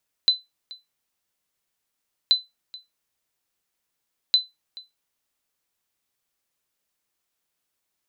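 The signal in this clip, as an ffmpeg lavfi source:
-f lavfi -i "aevalsrc='0.355*(sin(2*PI*4020*mod(t,2.03))*exp(-6.91*mod(t,2.03)/0.19)+0.0794*sin(2*PI*4020*max(mod(t,2.03)-0.43,0))*exp(-6.91*max(mod(t,2.03)-0.43,0)/0.19))':d=6.09:s=44100"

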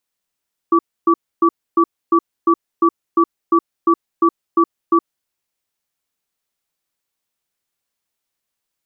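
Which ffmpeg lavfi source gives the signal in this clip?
-f lavfi -i "aevalsrc='0.251*(sin(2*PI*336*t)+sin(2*PI*1150*t))*clip(min(mod(t,0.35),0.07-mod(t,0.35))/0.005,0,1)':d=4.44:s=44100"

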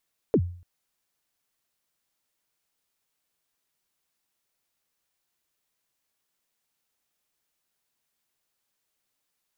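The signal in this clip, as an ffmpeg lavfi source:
-f lavfi -i "aevalsrc='0.2*pow(10,-3*t/0.48)*sin(2*PI*(520*0.064/log(88/520)*(exp(log(88/520)*min(t,0.064)/0.064)-1)+88*max(t-0.064,0)))':d=0.29:s=44100"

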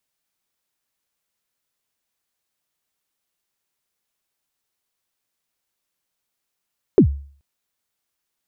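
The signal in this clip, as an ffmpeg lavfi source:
-f lavfi -i "aevalsrc='0.596*pow(10,-3*t/0.47)*sin(2*PI*(450*0.09/log(70/450)*(exp(log(70/450)*min(t,0.09)/0.09)-1)+70*max(t-0.09,0)))':d=0.43:s=44100"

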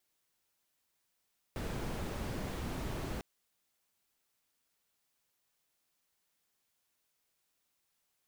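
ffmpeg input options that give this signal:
-f lavfi -i "anoisesrc=c=brown:a=0.0589:d=1.65:r=44100:seed=1"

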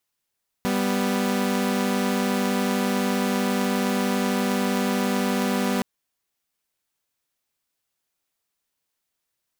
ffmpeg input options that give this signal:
-f lavfi -i "aevalsrc='0.0841*((2*mod(196*t,1)-1)+(2*mod(246.94*t,1)-1))':d=5.17:s=44100"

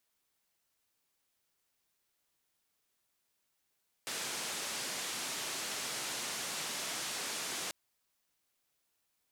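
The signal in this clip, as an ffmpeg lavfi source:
-f lavfi -i "anoisesrc=c=white:d=3.64:r=44100:seed=1,highpass=f=160,lowpass=f=8300,volume=-30dB"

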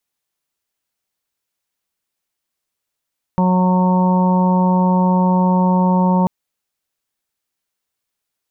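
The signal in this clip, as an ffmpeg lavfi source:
-f lavfi -i "aevalsrc='0.237*sin(2*PI*183*t)+0.0422*sin(2*PI*366*t)+0.0708*sin(2*PI*549*t)+0.0335*sin(2*PI*732*t)+0.119*sin(2*PI*915*t)+0.0299*sin(2*PI*1098*t)':d=2.89:s=44100"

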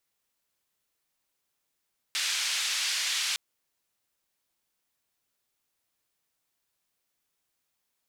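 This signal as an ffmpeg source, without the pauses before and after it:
-f lavfi -i "anoisesrc=c=white:d=1.21:r=44100:seed=1,highpass=f=2100,lowpass=f=5300,volume=-16.6dB"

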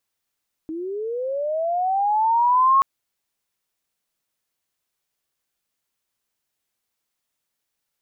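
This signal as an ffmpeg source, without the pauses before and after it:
-f lavfi -i "aevalsrc='pow(10,(-27+15*t/2.13)/20)*sin(2*PI*(310*t+790*t*t/(2*2.13)))':d=2.13:s=44100"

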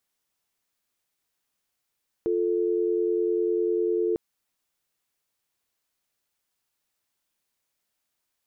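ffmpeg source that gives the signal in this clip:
-f lavfi -i "aevalsrc='0.0596*(sin(2*PI*350*t)+sin(2*PI*440*t))':d=1.9:s=44100"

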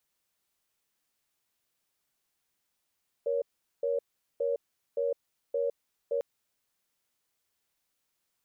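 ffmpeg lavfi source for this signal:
-f lavfi -i "aevalsrc='0.0355*(sin(2*PI*473*t)+sin(2*PI*560*t))*clip(min(mod(t,0.57),0.16-mod(t,0.57))/0.005,0,1)':d=2.95:s=44100"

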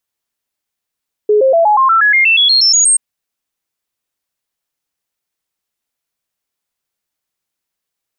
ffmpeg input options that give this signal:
-f lavfi -i "aevalsrc='0.473*clip(min(mod(t,0.12),0.12-mod(t,0.12))/0.005,0,1)*sin(2*PI*421*pow(2,floor(t/0.12)/3)*mod(t,0.12))':d=1.68:s=44100"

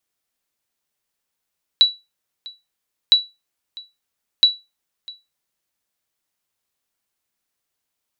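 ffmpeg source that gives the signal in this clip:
-f lavfi -i "aevalsrc='0.631*(sin(2*PI*3930*mod(t,1.31))*exp(-6.91*mod(t,1.31)/0.23)+0.0708*sin(2*PI*3930*max(mod(t,1.31)-0.65,0))*exp(-6.91*max(mod(t,1.31)-0.65,0)/0.23))':d=3.93:s=44100"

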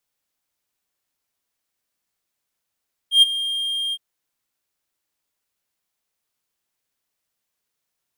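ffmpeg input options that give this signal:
-f lavfi -i "aevalsrc='0.562*(1-4*abs(mod(3210*t+0.25,1)-0.5))':d=0.865:s=44100,afade=t=in:d=0.112,afade=t=out:st=0.112:d=0.021:silence=0.178,afade=t=out:st=0.82:d=0.045"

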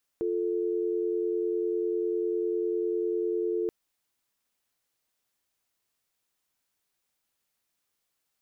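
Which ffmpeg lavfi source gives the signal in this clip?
-f lavfi -i "aevalsrc='0.0376*(sin(2*PI*350*t)+sin(2*PI*440*t))':d=3.48:s=44100"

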